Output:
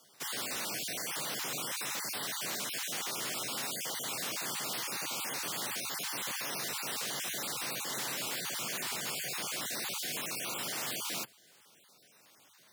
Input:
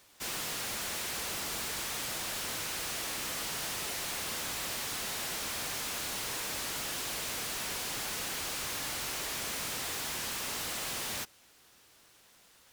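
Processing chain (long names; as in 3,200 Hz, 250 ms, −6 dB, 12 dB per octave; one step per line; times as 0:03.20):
time-frequency cells dropped at random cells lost 28%
frequency shifter +97 Hz
level +1 dB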